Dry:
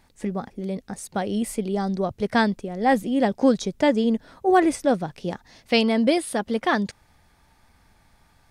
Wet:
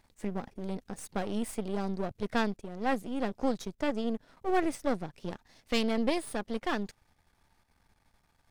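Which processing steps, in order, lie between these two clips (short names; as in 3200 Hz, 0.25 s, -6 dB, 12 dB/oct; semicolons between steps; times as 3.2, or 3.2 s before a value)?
half-wave gain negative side -12 dB; vocal rider within 3 dB 2 s; gain -7 dB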